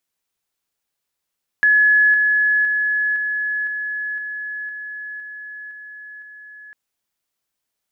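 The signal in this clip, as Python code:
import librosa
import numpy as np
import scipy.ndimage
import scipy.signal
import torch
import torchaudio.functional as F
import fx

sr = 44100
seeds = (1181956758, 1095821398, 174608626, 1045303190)

y = fx.level_ladder(sr, hz=1700.0, from_db=-10.5, step_db=-3.0, steps=10, dwell_s=0.51, gap_s=0.0)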